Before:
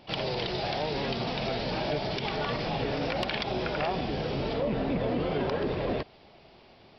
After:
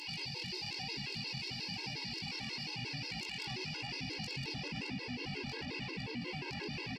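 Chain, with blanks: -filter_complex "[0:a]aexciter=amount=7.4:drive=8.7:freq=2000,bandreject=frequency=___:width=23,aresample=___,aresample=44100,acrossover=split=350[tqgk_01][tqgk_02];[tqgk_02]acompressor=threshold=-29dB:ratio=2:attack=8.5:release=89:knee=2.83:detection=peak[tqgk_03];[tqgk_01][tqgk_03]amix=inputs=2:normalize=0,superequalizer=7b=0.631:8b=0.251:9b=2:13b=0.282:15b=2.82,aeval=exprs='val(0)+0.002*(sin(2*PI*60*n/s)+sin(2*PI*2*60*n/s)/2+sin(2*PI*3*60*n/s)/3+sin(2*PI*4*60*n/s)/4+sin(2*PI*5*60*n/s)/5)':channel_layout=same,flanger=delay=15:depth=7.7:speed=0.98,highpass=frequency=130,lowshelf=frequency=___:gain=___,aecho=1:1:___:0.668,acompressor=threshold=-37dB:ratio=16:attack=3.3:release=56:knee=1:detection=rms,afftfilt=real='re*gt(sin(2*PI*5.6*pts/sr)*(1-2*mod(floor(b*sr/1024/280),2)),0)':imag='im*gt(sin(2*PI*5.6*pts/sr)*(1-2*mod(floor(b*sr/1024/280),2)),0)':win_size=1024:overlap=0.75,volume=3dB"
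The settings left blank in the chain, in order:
5200, 32000, 210, 11, 1013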